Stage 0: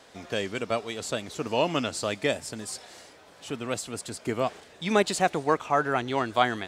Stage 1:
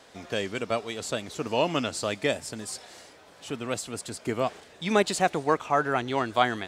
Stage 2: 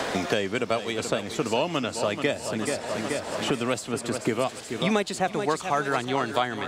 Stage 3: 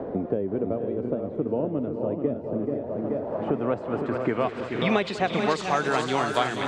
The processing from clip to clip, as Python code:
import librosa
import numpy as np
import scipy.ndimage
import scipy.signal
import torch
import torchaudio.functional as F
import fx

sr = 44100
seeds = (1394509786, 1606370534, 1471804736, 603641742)

y1 = x
y2 = fx.echo_feedback(y1, sr, ms=431, feedback_pct=47, wet_db=-11.5)
y2 = fx.band_squash(y2, sr, depth_pct=100)
y3 = fx.filter_sweep_lowpass(y2, sr, from_hz=430.0, to_hz=9600.0, start_s=2.8, end_s=6.24, q=1.1)
y3 = fx.echo_multitap(y3, sr, ms=(198, 200, 480, 513), db=(-17.0, -17.5, -9.5, -7.5))